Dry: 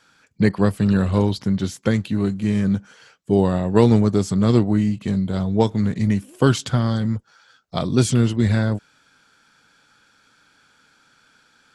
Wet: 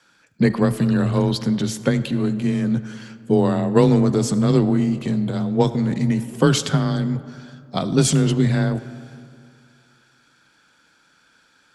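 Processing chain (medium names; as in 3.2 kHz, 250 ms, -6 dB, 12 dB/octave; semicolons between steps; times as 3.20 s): frequency shift +22 Hz; transient shaper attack +3 dB, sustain +7 dB; algorithmic reverb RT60 2.3 s, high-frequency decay 0.45×, pre-delay 30 ms, DRR 14 dB; trim -1.5 dB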